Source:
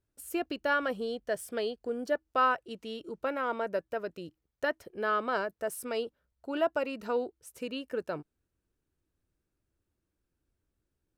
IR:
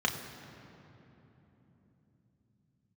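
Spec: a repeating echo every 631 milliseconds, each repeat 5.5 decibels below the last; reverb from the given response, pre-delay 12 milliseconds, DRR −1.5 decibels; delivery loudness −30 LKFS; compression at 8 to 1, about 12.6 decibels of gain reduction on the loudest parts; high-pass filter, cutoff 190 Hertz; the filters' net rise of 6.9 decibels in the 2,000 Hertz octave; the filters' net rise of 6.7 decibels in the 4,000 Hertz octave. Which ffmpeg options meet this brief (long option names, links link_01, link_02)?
-filter_complex "[0:a]highpass=190,equalizer=frequency=2000:width_type=o:gain=9,equalizer=frequency=4000:width_type=o:gain=5,acompressor=threshold=-31dB:ratio=8,aecho=1:1:631|1262|1893|2524|3155|3786|4417:0.531|0.281|0.149|0.079|0.0419|0.0222|0.0118,asplit=2[link_01][link_02];[1:a]atrim=start_sample=2205,adelay=12[link_03];[link_02][link_03]afir=irnorm=-1:irlink=0,volume=-7.5dB[link_04];[link_01][link_04]amix=inputs=2:normalize=0,volume=3dB"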